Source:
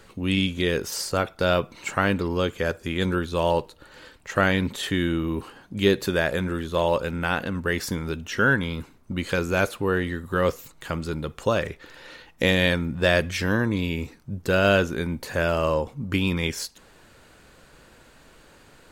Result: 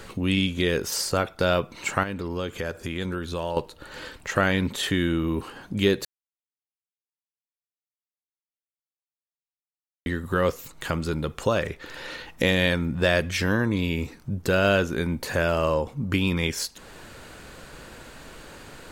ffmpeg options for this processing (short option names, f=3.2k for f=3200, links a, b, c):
-filter_complex "[0:a]asettb=1/sr,asplit=3[a][b][c];[a]atrim=end=2.034[d];[b]atrim=start=2.03:end=3.57,asetpts=PTS-STARTPTS,afade=t=in:d=0.004:c=qsin,afade=t=out:st=1.536:d=0.004:c=qsin,acompressor=threshold=-36dB:ratio=2:attack=3.2:release=140:knee=1:detection=peak[e];[c]atrim=start=3.566[f];[d][e]acrossfade=d=0.004:c1=hsin:c2=qsin[g];[g][f]acrossfade=d=0.004:c1=qsin:c2=hsin,asplit=3[h][i][j];[h]atrim=end=6.05,asetpts=PTS-STARTPTS,afade=t=out:st=6.046:d=0.004:c=hsin[k];[i]atrim=start=6.05:end=10.06,asetpts=PTS-STARTPTS,volume=0[l];[j]atrim=start=10.06,asetpts=PTS-STARTPTS,afade=t=in:d=0.004:c=hsin[m];[k][l][m]concat=n=3:v=0:a=1,acompressor=threshold=-44dB:ratio=1.5,volume=8.5dB"